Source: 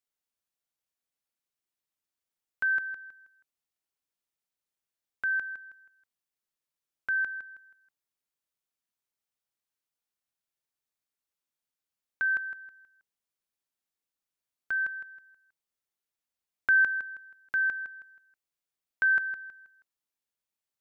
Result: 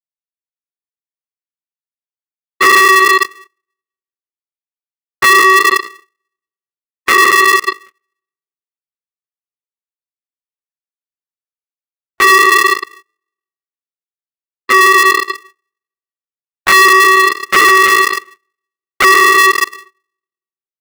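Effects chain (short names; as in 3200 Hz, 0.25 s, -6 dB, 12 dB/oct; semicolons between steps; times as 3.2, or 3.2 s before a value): sine-wave speech; AGC gain up to 6.5 dB; LPC vocoder at 8 kHz whisper; comb 4.7 ms, depth 98%; shoebox room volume 540 m³, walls mixed, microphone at 0.7 m; sample leveller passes 3; air absorption 90 m; gate -54 dBFS, range -21 dB; maximiser +21.5 dB; polarity switched at an audio rate 380 Hz; gain -2.5 dB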